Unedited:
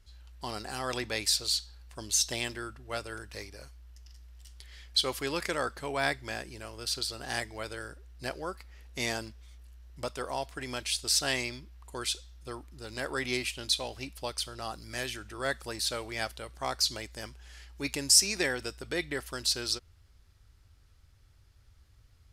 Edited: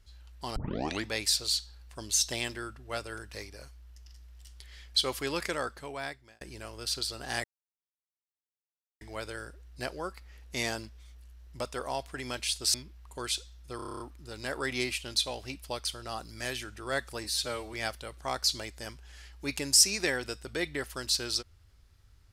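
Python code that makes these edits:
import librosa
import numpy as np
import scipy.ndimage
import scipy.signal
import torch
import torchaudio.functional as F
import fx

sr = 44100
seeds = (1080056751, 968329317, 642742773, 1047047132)

y = fx.edit(x, sr, fx.tape_start(start_s=0.56, length_s=0.5),
    fx.fade_out_span(start_s=5.42, length_s=0.99),
    fx.insert_silence(at_s=7.44, length_s=1.57),
    fx.cut(start_s=11.17, length_s=0.34),
    fx.stutter(start_s=12.53, slice_s=0.03, count=9),
    fx.stretch_span(start_s=15.77, length_s=0.33, factor=1.5), tone=tone)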